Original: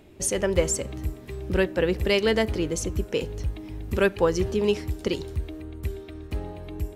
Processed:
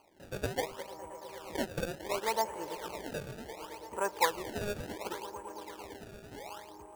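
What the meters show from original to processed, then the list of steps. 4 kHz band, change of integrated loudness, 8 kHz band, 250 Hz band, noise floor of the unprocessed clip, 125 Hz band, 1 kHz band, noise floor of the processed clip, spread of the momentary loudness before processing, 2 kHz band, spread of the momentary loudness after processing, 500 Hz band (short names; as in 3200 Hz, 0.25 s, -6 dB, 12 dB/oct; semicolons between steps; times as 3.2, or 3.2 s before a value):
-9.5 dB, -11.0 dB, -12.5 dB, -15.0 dB, -44 dBFS, -16.5 dB, +1.0 dB, -52 dBFS, 13 LU, -8.5 dB, 15 LU, -13.0 dB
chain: band-pass 920 Hz, Q 7.7; swelling echo 0.112 s, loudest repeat 5, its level -17 dB; decimation with a swept rate 24×, swing 160% 0.69 Hz; gain +7.5 dB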